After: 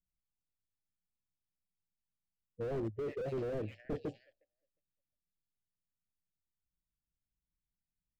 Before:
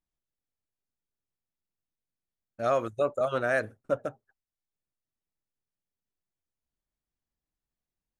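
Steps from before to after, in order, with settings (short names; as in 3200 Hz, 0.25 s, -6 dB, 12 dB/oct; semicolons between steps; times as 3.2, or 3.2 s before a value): Wiener smoothing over 15 samples; low-pass opened by the level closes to 320 Hz, open at -23.5 dBFS; ripple EQ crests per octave 1.2, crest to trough 6 dB; delay with a stepping band-pass 0.357 s, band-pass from 3000 Hz, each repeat 0.7 oct, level -6 dB; formant shift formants -4 st; elliptic band-stop 780–1700 Hz; low-pass opened by the level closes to 360 Hz, open at -28 dBFS; slew limiter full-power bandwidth 7.3 Hz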